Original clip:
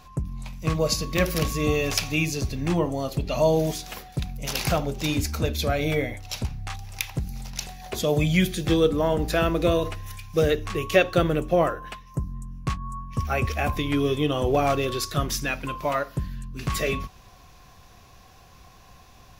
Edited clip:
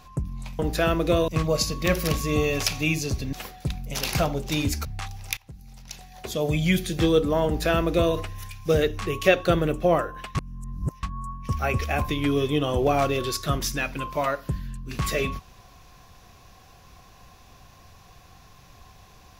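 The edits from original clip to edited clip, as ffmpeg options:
ffmpeg -i in.wav -filter_complex "[0:a]asplit=8[link_01][link_02][link_03][link_04][link_05][link_06][link_07][link_08];[link_01]atrim=end=0.592[link_09];[link_02]atrim=start=9.138:end=9.832[link_10];[link_03]atrim=start=0.588:end=2.642[link_11];[link_04]atrim=start=3.848:end=5.372[link_12];[link_05]atrim=start=6.528:end=7.05,asetpts=PTS-STARTPTS,afade=type=out:start_time=0.518:duration=0.004:curve=hsin:silence=0.0891251[link_13];[link_06]atrim=start=7.05:end=12.032,asetpts=PTS-STARTPTS,afade=type=in:duration=1.52:silence=0.0891251[link_14];[link_07]atrim=start=12.028:end=12.712,asetpts=PTS-STARTPTS,areverse[link_15];[link_08]atrim=start=12.708[link_16];[link_09][link_10]acrossfade=duration=0.004:curve1=hsin:curve2=hsin[link_17];[link_17][link_11]acrossfade=duration=0.004:curve1=hsin:curve2=hsin[link_18];[link_18][link_12]acrossfade=duration=0.004:curve1=hsin:curve2=hsin[link_19];[link_13][link_14]concat=n=2:v=0:a=1[link_20];[link_19][link_20]acrossfade=duration=0.004:curve1=hsin:curve2=hsin[link_21];[link_21][link_15]acrossfade=duration=0.004:curve1=hsin:curve2=hsin[link_22];[link_22][link_16]acrossfade=duration=0.004:curve1=hsin:curve2=hsin" out.wav

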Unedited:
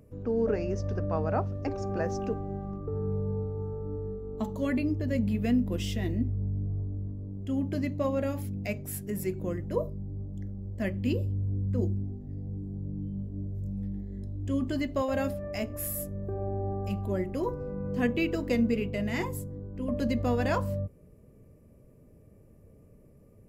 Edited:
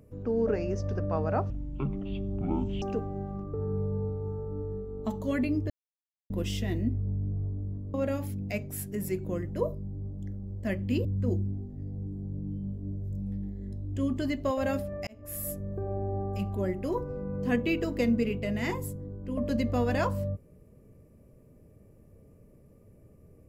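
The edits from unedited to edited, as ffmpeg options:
ffmpeg -i in.wav -filter_complex "[0:a]asplit=8[link_01][link_02][link_03][link_04][link_05][link_06][link_07][link_08];[link_01]atrim=end=1.504[link_09];[link_02]atrim=start=1.5:end=2.16,asetpts=PTS-STARTPTS,asetrate=22050,aresample=44100[link_10];[link_03]atrim=start=2.156:end=5.04,asetpts=PTS-STARTPTS,afade=type=out:start_time=2.88:duration=0.004:curve=hsin[link_11];[link_04]atrim=start=5.04:end=5.64,asetpts=PTS-STARTPTS,volume=0[link_12];[link_05]atrim=start=5.64:end=7.282,asetpts=PTS-STARTPTS,afade=type=in:duration=0.004:curve=hsin[link_13];[link_06]atrim=start=8.088:end=11.202[link_14];[link_07]atrim=start=11.558:end=15.58,asetpts=PTS-STARTPTS,afade=type=out:start_time=4.018:duration=0.004:curve=hsin[link_15];[link_08]atrim=start=15.58,asetpts=PTS-STARTPTS,afade=type=in:duration=0.42[link_16];[link_09][link_10]acrossfade=duration=0.004:curve1=hsin:curve2=hsin[link_17];[link_11][link_12][link_13]concat=n=3:v=0:a=1[link_18];[link_17][link_18]acrossfade=duration=0.004:curve1=hsin:curve2=hsin[link_19];[link_19][link_14]acrossfade=duration=0.004:curve1=hsin:curve2=hsin[link_20];[link_15][link_16]concat=n=2:v=0:a=1[link_21];[link_20][link_21]acrossfade=duration=0.004:curve1=hsin:curve2=hsin" out.wav

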